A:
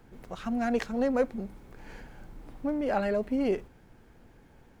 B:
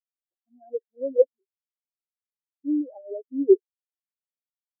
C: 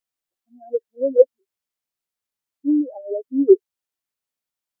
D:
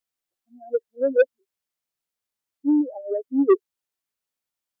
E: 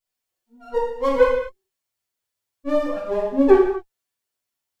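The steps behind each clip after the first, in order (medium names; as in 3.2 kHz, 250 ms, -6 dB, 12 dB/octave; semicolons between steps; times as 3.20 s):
resonant low shelf 240 Hz -9 dB, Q 3; spectral contrast expander 4:1; trim +6 dB
dynamic bell 390 Hz, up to -4 dB, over -27 dBFS, Q 1.6; trim +8 dB
saturation -10 dBFS, distortion -10 dB
comb filter that takes the minimum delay 8 ms; gated-style reverb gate 280 ms falling, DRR -5 dB; trim -1 dB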